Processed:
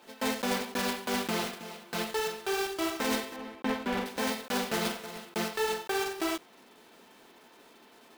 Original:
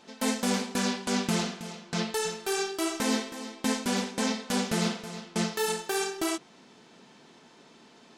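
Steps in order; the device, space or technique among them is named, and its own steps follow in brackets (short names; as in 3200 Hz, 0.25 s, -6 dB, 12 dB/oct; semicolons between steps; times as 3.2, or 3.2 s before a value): early digital voice recorder (BPF 290–3800 Hz; block floating point 3-bit); 3.36–4.06 tone controls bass +3 dB, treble -14 dB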